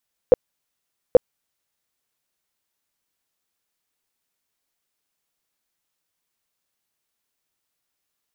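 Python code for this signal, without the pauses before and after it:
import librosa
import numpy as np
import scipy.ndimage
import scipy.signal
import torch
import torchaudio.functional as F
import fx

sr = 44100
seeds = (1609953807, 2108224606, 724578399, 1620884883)

y = fx.tone_burst(sr, hz=502.0, cycles=9, every_s=0.83, bursts=2, level_db=-5.0)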